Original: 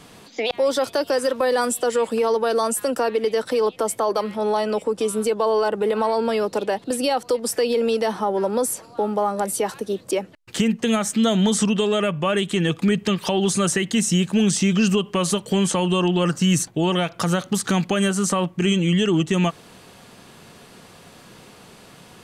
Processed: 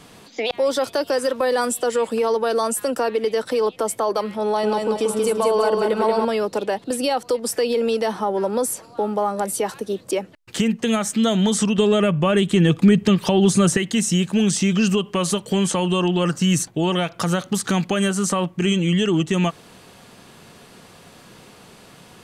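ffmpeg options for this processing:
-filter_complex "[0:a]asettb=1/sr,asplit=3[s0][s1][s2];[s0]atrim=end=4.454[s3];[s1]atrim=start=4.45:end=6.25,asetpts=PTS-STARTPTS,afade=t=in:d=0.004:c=qsin,afade=t=out:st=1.796:d=0.004:c=qsin,aecho=1:1:183|366|549|732|915:0.668|0.274|0.112|0.0461|0.0189,atrim=end_sample=79380[s4];[s2]atrim=start=6.246[s5];[s3][s4]acrossfade=d=0.004:c1=hsin:c2=qsin[s6];[s6][s5]acrossfade=d=0.004:c1=qsin:c2=hsin,asettb=1/sr,asplit=3[s7][s8][s9];[s7]atrim=end=11.784[s10];[s8]atrim=start=11.78:end=13.77,asetpts=PTS-STARTPTS,afade=t=in:d=0.004:c=qsin,afade=t=out:st=1.986:d=0.004:c=qsin,lowshelf=f=370:g=8[s11];[s9]atrim=start=13.766[s12];[s10][s11]acrossfade=d=0.004:c1=hsin:c2=qsin[s13];[s13][s12]acrossfade=d=0.004:c1=qsin:c2=hsin"

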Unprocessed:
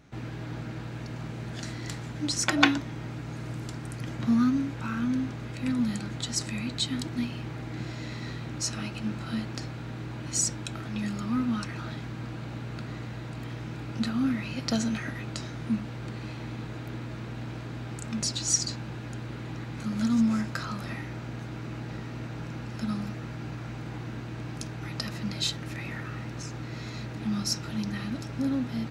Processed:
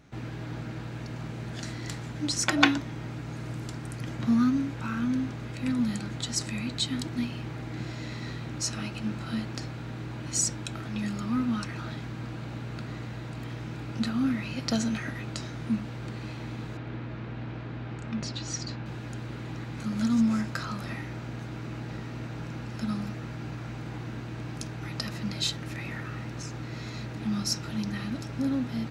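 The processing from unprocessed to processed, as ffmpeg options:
-filter_complex "[0:a]asettb=1/sr,asplit=3[s0][s1][s2];[s0]atrim=end=16.774[s3];[s1]atrim=start=16.77:end=18.86,asetpts=PTS-STARTPTS,afade=t=in:d=0.004:c=qsin,afade=t=out:st=2.086:d=0.004:c=qsin,lowpass=3300[s4];[s2]atrim=start=18.856[s5];[s3][s4]acrossfade=d=0.004:c1=hsin:c2=qsin[s6];[s6][s5]acrossfade=d=0.004:c1=qsin:c2=hsin"

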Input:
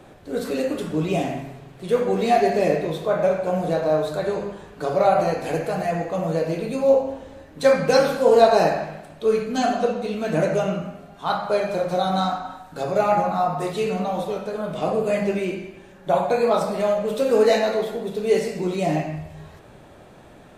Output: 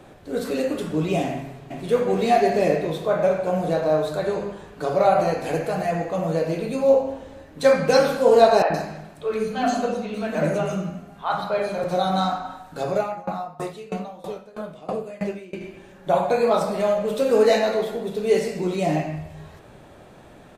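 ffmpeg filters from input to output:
-filter_complex "[0:a]asplit=2[s0][s1];[s1]afade=t=in:st=1.31:d=0.01,afade=t=out:st=1.85:d=0.01,aecho=0:1:390|780|1170|1560|1950|2340|2730|3120|3510:0.630957|0.378574|0.227145|0.136287|0.0817721|0.0490632|0.0294379|0.0176628|0.0105977[s2];[s0][s2]amix=inputs=2:normalize=0,asettb=1/sr,asplit=3[s3][s4][s5];[s3]atrim=end=8.624[s6];[s4]atrim=start=8.62:end=11.84,asetpts=PTS-STARTPTS,afade=t=in:d=0.004:c=qsin,afade=t=out:st=3.216:d=0.004:c=qsin,acrossover=split=440|3800[s7][s8][s9];[s7]adelay=80[s10];[s9]adelay=120[s11];[s10][s8][s11]amix=inputs=3:normalize=0,atrim=end_sample=142002[s12];[s5]atrim=start=11.836[s13];[s6][s12]acrossfade=d=0.004:c1=hsin:c2=qsin[s14];[s14][s13]acrossfade=d=0.004:c1=qsin:c2=hsin,asettb=1/sr,asplit=3[s15][s16][s17];[s15]atrim=end=12.954[s18];[s16]atrim=start=12.95:end=15.61,asetpts=PTS-STARTPTS,afade=t=in:d=0.004:c=qsin,afade=t=out:st=2.656:d=0.004:c=qsin,aeval=exprs='val(0)*pow(10,-22*if(lt(mod(3.1*n/s,1),2*abs(3.1)/1000),1-mod(3.1*n/s,1)/(2*abs(3.1)/1000),(mod(3.1*n/s,1)-2*abs(3.1)/1000)/(1-2*abs(3.1)/1000))/20)':c=same[s19];[s17]atrim=start=15.606[s20];[s18][s19]acrossfade=d=0.004:c1=hsin:c2=qsin[s21];[s21][s20]acrossfade=d=0.004:c1=qsin:c2=hsin"

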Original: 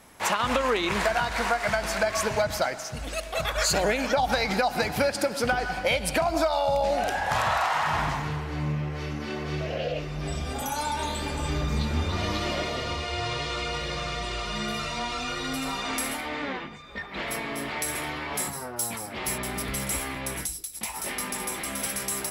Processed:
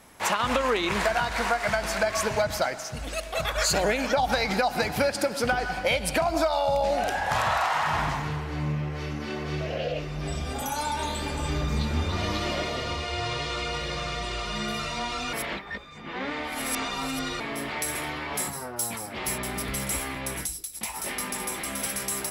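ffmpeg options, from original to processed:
-filter_complex "[0:a]asplit=3[s0][s1][s2];[s0]atrim=end=15.332[s3];[s1]atrim=start=15.328:end=17.402,asetpts=PTS-STARTPTS,areverse[s4];[s2]atrim=start=17.398[s5];[s3][s4]acrossfade=d=0.004:c1=hsin:c2=hsin[s6];[s6][s5]acrossfade=d=0.004:c1=hsin:c2=hsin"

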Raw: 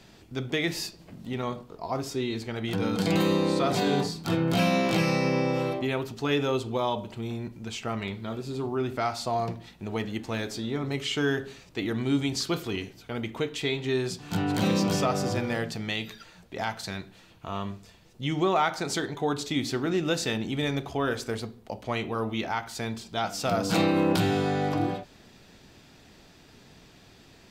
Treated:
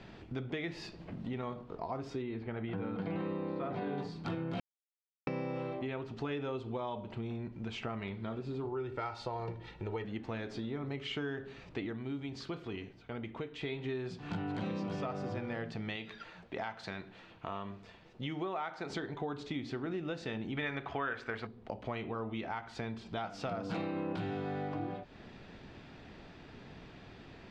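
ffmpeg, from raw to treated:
-filter_complex "[0:a]asettb=1/sr,asplit=3[s0][s1][s2];[s0]atrim=end=2.224[s3];[s1]atrim=start=2.22:end=3.98,asetpts=PTS-STARTPTS,afade=t=in:d=0.004:c=qsin,afade=t=out:st=1.756:d=0.004:c=qsin,lowpass=2400[s4];[s2]atrim=start=3.976[s5];[s3][s4]acrossfade=d=0.004:c1=hsin:c2=qsin[s6];[s6][s5]acrossfade=d=0.004:c1=qsin:c2=hsin,asettb=1/sr,asplit=3[s7][s8][s9];[s7]atrim=end=8.654[s10];[s8]atrim=start=8.65:end=10.04,asetpts=PTS-STARTPTS,afade=t=in:d=0.004:c=qsin,afade=t=out:st=1.386:d=0.004:c=qsin,aecho=1:1:2.2:0.63,atrim=end_sample=61299[s11];[s9]atrim=start=10.036[s12];[s10][s11]acrossfade=d=0.004:c1=hsin:c2=qsin[s13];[s13][s12]acrossfade=d=0.004:c1=qsin:c2=hsin,asettb=1/sr,asplit=3[s14][s15][s16];[s14]atrim=end=15.964[s17];[s15]atrim=start=15.96:end=18.9,asetpts=PTS-STARTPTS,afade=t=in:d=0.004:c=qsin,afade=t=out:st=2.936:d=0.004:c=qsin,lowshelf=f=180:g=-9[s18];[s16]atrim=start=18.896[s19];[s17][s18]acrossfade=d=0.004:c1=hsin:c2=qsin[s20];[s20][s19]acrossfade=d=0.004:c1=qsin:c2=hsin,asettb=1/sr,asplit=3[s21][s22][s23];[s21]atrim=end=20.574[s24];[s22]atrim=start=20.57:end=21.47,asetpts=PTS-STARTPTS,afade=t=in:d=0.004:c=qsin,afade=t=out:st=0.896:d=0.004:c=qsin,equalizer=f=1700:w=0.6:g=14.5[s25];[s23]atrim=start=21.466[s26];[s24][s25]acrossfade=d=0.004:c1=hsin:c2=qsin[s27];[s27][s26]acrossfade=d=0.004:c1=qsin:c2=hsin,asplit=5[s28][s29][s30][s31][s32];[s28]atrim=end=4.6,asetpts=PTS-STARTPTS,afade=t=out:st=4.596:d=0.004:c=hsin[s33];[s29]atrim=start=4.6:end=5.27,asetpts=PTS-STARTPTS,volume=0[s34];[s30]atrim=start=5.27:end=11.99,asetpts=PTS-STARTPTS,afade=t=in:d=0.004:c=hsin,afade=t=out:st=6.58:d=0.14:silence=0.398107[s35];[s31]atrim=start=11.99:end=13.59,asetpts=PTS-STARTPTS,volume=0.398[s36];[s32]atrim=start=13.59,asetpts=PTS-STARTPTS,afade=t=in:d=0.14:silence=0.398107[s37];[s33][s34][s35][s36][s37]concat=n=5:v=0:a=1,lowpass=2700,acompressor=threshold=0.01:ratio=4,volume=1.33"

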